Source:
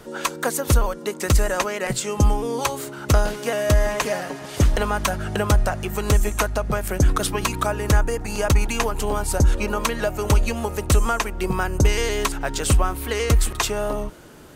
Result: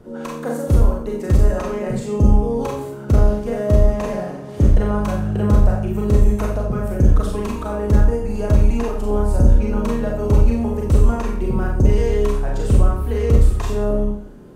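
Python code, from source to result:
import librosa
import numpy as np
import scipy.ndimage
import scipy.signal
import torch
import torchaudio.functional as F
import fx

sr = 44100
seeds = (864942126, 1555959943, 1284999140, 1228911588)

y = fx.tilt_shelf(x, sr, db=10.0, hz=850.0)
y = fx.rev_schroeder(y, sr, rt60_s=0.56, comb_ms=30, drr_db=-2.0)
y = y * librosa.db_to_amplitude(-7.5)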